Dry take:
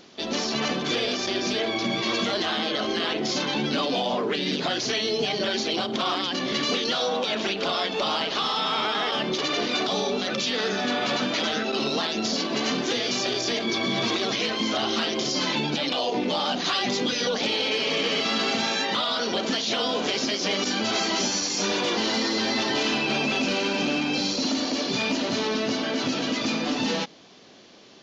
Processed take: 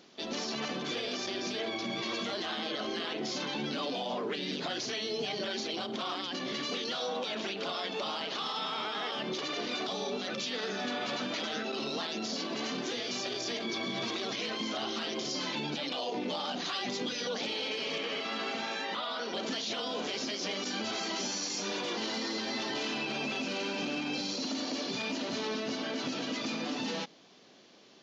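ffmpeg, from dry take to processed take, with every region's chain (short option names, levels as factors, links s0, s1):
-filter_complex "[0:a]asettb=1/sr,asplit=3[s0][s1][s2];[s0]atrim=end=17.984[s3];[s1]atrim=start=17.98:end=19.34,asetpts=PTS-STARTPTS,afade=t=in:d=0.004:c=qsin,afade=t=out:st=1.356:d=0.004:c=qsin,acrossover=split=3100[s4][s5];[s5]acompressor=threshold=0.0141:ratio=4:attack=1:release=60[s6];[s4][s6]amix=inputs=2:normalize=0,lowshelf=f=200:g=-10[s7];[s2]atrim=start=19.336[s8];[s3][s7]acrossfade=d=0.004:c1=hsin:c2=qsin[s9];[s9][s8]acrossfade=d=0.004:c1=qsin:c2=hsin,highpass=44,equalizer=f=83:t=o:w=0.76:g=-8.5,alimiter=limit=0.119:level=0:latency=1:release=35,volume=0.422"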